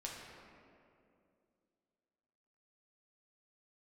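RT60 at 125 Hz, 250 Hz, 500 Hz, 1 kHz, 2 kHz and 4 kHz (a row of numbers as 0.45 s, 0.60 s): 2.6 s, 2.9 s, 2.8 s, 2.2 s, 1.9 s, 1.3 s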